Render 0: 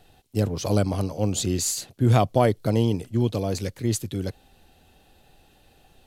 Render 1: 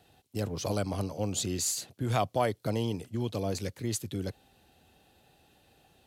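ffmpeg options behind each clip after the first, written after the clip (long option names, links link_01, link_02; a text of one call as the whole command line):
ffmpeg -i in.wav -filter_complex "[0:a]highpass=72,acrossover=split=610[link_01][link_02];[link_01]alimiter=limit=-19.5dB:level=0:latency=1:release=228[link_03];[link_03][link_02]amix=inputs=2:normalize=0,volume=-4.5dB" out.wav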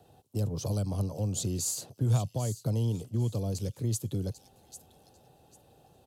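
ffmpeg -i in.wav -filter_complex "[0:a]equalizer=frequency=125:width_type=o:width=1:gain=7,equalizer=frequency=500:width_type=o:width=1:gain=6,equalizer=frequency=1000:width_type=o:width=1:gain=4,equalizer=frequency=2000:width_type=o:width=1:gain=-10,equalizer=frequency=4000:width_type=o:width=1:gain=-3,acrossover=split=220|2800[link_01][link_02][link_03];[link_02]acompressor=threshold=-38dB:ratio=6[link_04];[link_03]aecho=1:1:795|1590|2385:0.282|0.062|0.0136[link_05];[link_01][link_04][link_05]amix=inputs=3:normalize=0" out.wav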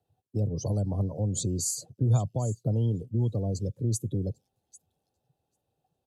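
ffmpeg -i in.wav -af "afftdn=noise_reduction=23:noise_floor=-41,volume=2.5dB" out.wav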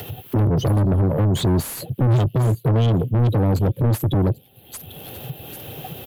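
ffmpeg -i in.wav -filter_complex "[0:a]firequalizer=gain_entry='entry(130,0);entry(190,-6);entry(900,-20);entry(3100,1);entry(5500,-26);entry(8300,-14);entry(12000,13)':delay=0.05:min_phase=1,acompressor=mode=upward:threshold=-35dB:ratio=2.5,asplit=2[link_01][link_02];[link_02]highpass=frequency=720:poles=1,volume=38dB,asoftclip=type=tanh:threshold=-15.5dB[link_03];[link_01][link_03]amix=inputs=2:normalize=0,lowpass=frequency=1500:poles=1,volume=-6dB,volume=5.5dB" out.wav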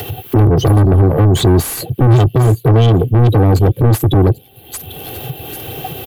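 ffmpeg -i in.wav -af "aecho=1:1:2.6:0.41,volume=8dB" out.wav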